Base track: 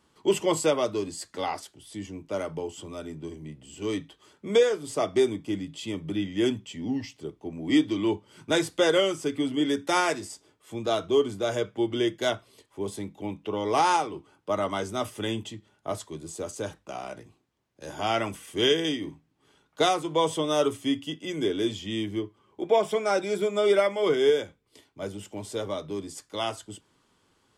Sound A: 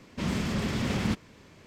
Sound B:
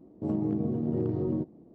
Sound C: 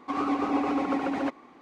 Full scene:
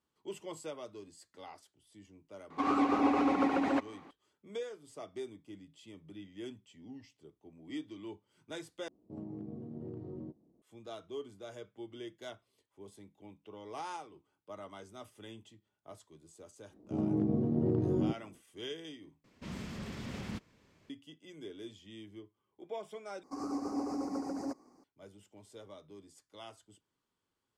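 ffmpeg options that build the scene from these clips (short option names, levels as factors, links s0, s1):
-filter_complex "[3:a]asplit=2[s0][s1];[2:a]asplit=2[s2][s3];[0:a]volume=0.106[s4];[s3]dynaudnorm=f=150:g=5:m=1.58[s5];[s1]firequalizer=gain_entry='entry(330,0);entry(3400,-27);entry(4800,10)':delay=0.05:min_phase=1[s6];[s4]asplit=4[s7][s8][s9][s10];[s7]atrim=end=8.884[s11];[s2]atrim=end=1.74,asetpts=PTS-STARTPTS,volume=0.178[s12];[s8]atrim=start=10.616:end=19.244[s13];[1:a]atrim=end=1.66,asetpts=PTS-STARTPTS,volume=0.224[s14];[s9]atrim=start=20.896:end=23.234[s15];[s6]atrim=end=1.61,asetpts=PTS-STARTPTS,volume=0.376[s16];[s10]atrim=start=24.836[s17];[s0]atrim=end=1.61,asetpts=PTS-STARTPTS,volume=0.841,afade=t=in:d=0.004:c=hsin,afade=t=out:st=1.606:d=0.004:c=hsin,adelay=2500[s18];[s5]atrim=end=1.74,asetpts=PTS-STARTPTS,volume=0.562,afade=t=in:d=0.1,afade=t=out:st=1.64:d=0.1,adelay=16690[s19];[s11][s12]acrossfade=d=0.004:c1=hsin:c2=hsin[s20];[s20][s13]acrossfade=d=0.004:c1=hsin:c2=hsin[s21];[s21][s14]acrossfade=d=0.004:c1=hsin:c2=hsin[s22];[s22][s15]acrossfade=d=0.004:c1=hsin:c2=hsin[s23];[s23][s16]acrossfade=d=0.004:c1=hsin:c2=hsin[s24];[s24][s17]acrossfade=d=0.004:c1=hsin:c2=hsin[s25];[s25][s18][s19]amix=inputs=3:normalize=0"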